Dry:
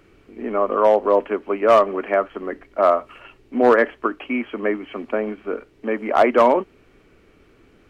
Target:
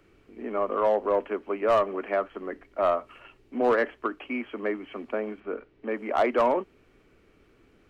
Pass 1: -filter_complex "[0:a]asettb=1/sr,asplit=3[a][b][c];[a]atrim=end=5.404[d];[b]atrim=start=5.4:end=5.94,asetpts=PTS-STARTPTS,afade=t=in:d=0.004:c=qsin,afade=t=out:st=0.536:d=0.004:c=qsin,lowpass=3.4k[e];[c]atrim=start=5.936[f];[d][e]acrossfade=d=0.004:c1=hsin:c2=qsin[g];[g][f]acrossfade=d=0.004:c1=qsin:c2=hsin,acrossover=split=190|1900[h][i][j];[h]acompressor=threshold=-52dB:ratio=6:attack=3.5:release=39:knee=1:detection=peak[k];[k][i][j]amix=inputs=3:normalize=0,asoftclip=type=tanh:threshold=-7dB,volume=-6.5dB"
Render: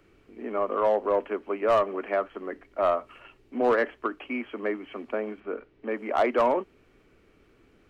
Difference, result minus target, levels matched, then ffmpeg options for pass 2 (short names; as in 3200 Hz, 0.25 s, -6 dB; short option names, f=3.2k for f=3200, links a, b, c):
compressor: peak gain reduction +6 dB
-filter_complex "[0:a]asettb=1/sr,asplit=3[a][b][c];[a]atrim=end=5.404[d];[b]atrim=start=5.4:end=5.94,asetpts=PTS-STARTPTS,afade=t=in:d=0.004:c=qsin,afade=t=out:st=0.536:d=0.004:c=qsin,lowpass=3.4k[e];[c]atrim=start=5.936[f];[d][e]acrossfade=d=0.004:c1=hsin:c2=qsin[g];[g][f]acrossfade=d=0.004:c1=qsin:c2=hsin,acrossover=split=190|1900[h][i][j];[h]acompressor=threshold=-45dB:ratio=6:attack=3.5:release=39:knee=1:detection=peak[k];[k][i][j]amix=inputs=3:normalize=0,asoftclip=type=tanh:threshold=-7dB,volume=-6.5dB"